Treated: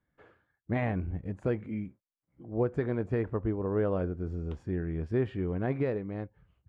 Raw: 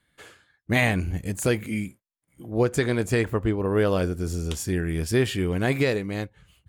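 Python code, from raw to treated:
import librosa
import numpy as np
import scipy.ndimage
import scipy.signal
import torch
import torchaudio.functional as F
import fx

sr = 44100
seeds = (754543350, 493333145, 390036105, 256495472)

y = scipy.signal.sosfilt(scipy.signal.butter(2, 1200.0, 'lowpass', fs=sr, output='sos'), x)
y = y * 10.0 ** (-6.5 / 20.0)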